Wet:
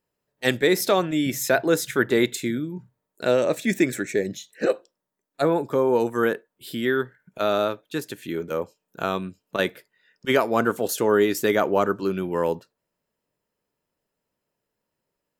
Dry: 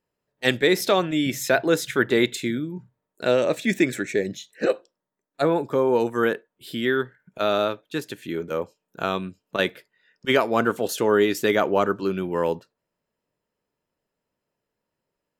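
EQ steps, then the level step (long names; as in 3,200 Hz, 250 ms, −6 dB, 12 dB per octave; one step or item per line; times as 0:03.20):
dynamic equaliser 3,100 Hz, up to −4 dB, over −41 dBFS, Q 1.2
high-shelf EQ 8,000 Hz +6 dB
0.0 dB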